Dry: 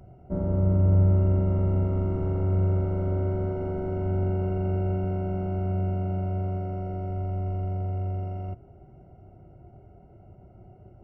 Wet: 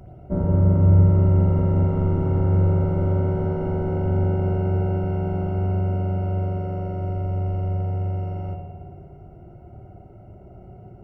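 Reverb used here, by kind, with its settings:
spring reverb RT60 1.6 s, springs 55 ms, chirp 60 ms, DRR 2 dB
level +5 dB

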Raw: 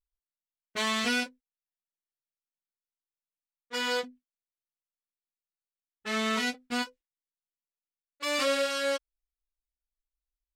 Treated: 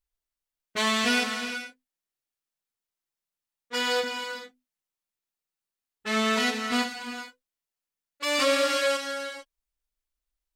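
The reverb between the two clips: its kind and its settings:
reverb whose tail is shaped and stops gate 480 ms flat, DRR 4.5 dB
level +3.5 dB

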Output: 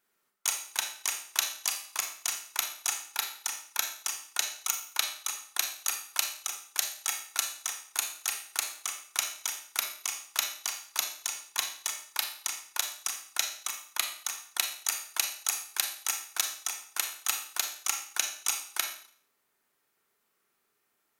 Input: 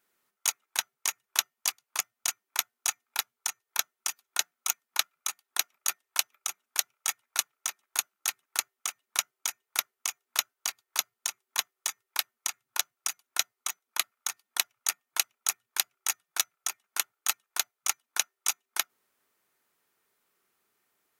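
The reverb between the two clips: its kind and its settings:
four-comb reverb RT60 0.54 s, combs from 28 ms, DRR 3.5 dB
level −2 dB

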